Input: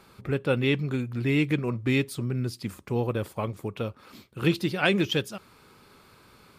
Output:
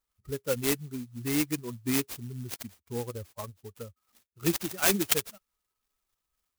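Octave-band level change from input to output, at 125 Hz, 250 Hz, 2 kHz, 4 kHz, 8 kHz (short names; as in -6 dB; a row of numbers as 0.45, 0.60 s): -10.0, -5.5, -6.0, -2.5, +13.0 dB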